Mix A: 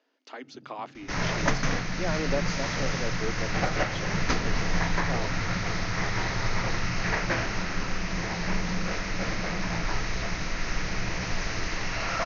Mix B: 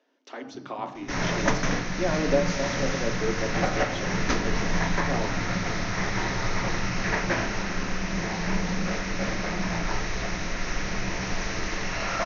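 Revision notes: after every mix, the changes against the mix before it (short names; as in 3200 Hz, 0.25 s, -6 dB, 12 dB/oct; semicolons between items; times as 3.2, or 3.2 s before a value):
first sound: remove HPF 180 Hz; reverb: on, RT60 0.70 s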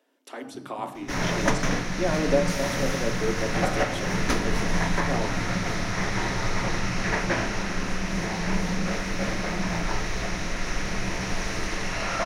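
master: remove Chebyshev low-pass 6500 Hz, order 6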